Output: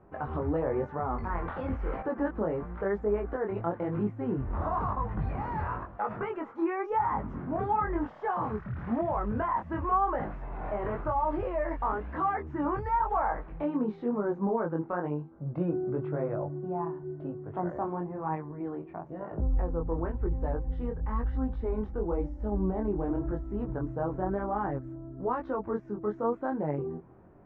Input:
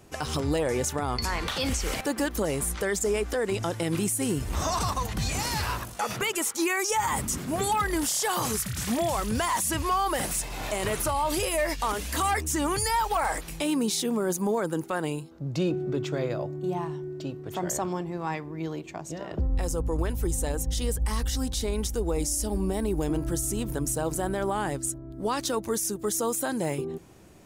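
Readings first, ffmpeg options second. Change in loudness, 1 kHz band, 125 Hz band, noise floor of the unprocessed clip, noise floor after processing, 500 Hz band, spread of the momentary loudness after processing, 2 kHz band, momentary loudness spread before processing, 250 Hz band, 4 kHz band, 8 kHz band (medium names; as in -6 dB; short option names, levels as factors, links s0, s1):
-4.0 dB, -1.5 dB, -3.0 dB, -41 dBFS, -48 dBFS, -2.5 dB, 7 LU, -9.5 dB, 6 LU, -2.5 dB, under -30 dB, under -40 dB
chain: -af "lowpass=f=1500:w=0.5412,lowpass=f=1500:w=1.3066,equalizer=f=860:w=1.5:g=2,flanger=delay=19:depth=5.4:speed=0.98"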